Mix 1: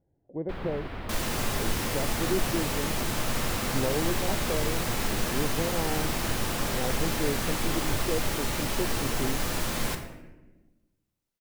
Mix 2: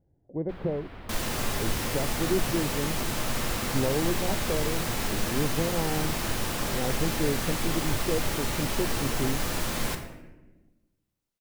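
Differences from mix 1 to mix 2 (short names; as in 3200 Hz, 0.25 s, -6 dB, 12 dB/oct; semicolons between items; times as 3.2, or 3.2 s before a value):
speech: add low shelf 210 Hz +7 dB; first sound -6.5 dB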